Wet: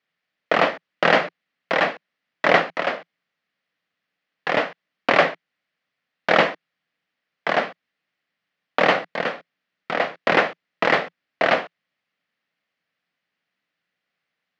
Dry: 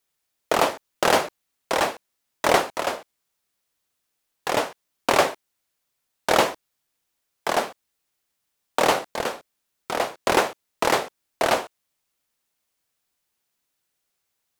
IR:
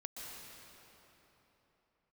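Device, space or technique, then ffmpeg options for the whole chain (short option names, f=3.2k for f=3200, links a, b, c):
kitchen radio: -af "highpass=170,equalizer=f=170:t=q:w=4:g=7,equalizer=f=380:t=q:w=4:g=-7,equalizer=f=920:t=q:w=4:g=-7,equalizer=f=1.9k:t=q:w=4:g=6,equalizer=f=3.7k:t=q:w=4:g=-4,lowpass=f=3.9k:w=0.5412,lowpass=f=3.9k:w=1.3066,volume=3.5dB"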